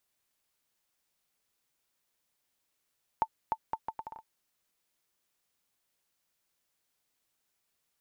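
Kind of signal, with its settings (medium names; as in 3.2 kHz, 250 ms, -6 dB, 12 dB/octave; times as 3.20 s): bouncing ball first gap 0.30 s, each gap 0.71, 889 Hz, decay 59 ms -15.5 dBFS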